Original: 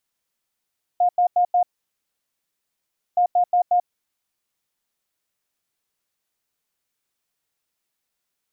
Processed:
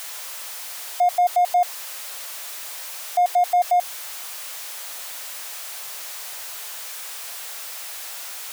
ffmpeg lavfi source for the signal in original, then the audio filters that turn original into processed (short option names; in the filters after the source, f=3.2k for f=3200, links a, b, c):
-f lavfi -i "aevalsrc='0.2*sin(2*PI*713*t)*clip(min(mod(mod(t,2.17),0.18),0.09-mod(mod(t,2.17),0.18))/0.005,0,1)*lt(mod(t,2.17),0.72)':d=4.34:s=44100"
-filter_complex "[0:a]aeval=exprs='val(0)+0.5*0.0299*sgn(val(0))':c=same,highpass=f=530:w=0.5412,highpass=f=530:w=1.3066,asplit=2[a][b];[b]asoftclip=type=tanh:threshold=-30.5dB,volume=-8dB[c];[a][c]amix=inputs=2:normalize=0"